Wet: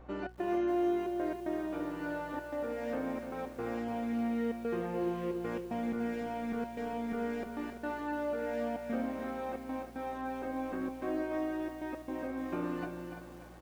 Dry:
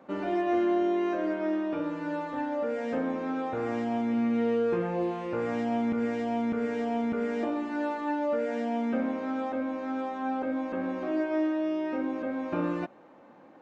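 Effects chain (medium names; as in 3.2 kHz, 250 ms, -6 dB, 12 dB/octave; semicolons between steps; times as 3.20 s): de-hum 140.8 Hz, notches 4; in parallel at -0.5 dB: compression 8:1, threshold -36 dBFS, peak gain reduction 13.5 dB; on the sum: trance gate "xx.xxxxx.x.xxxxx" 113 bpm; mains buzz 60 Hz, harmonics 27, -45 dBFS -9 dB/octave; feedback comb 370 Hz, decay 0.17 s, harmonics all, mix 70%; on a send: delay 339 ms -10.5 dB; on the sum: bit-crushed delay 293 ms, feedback 55%, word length 9-bit, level -8.5 dB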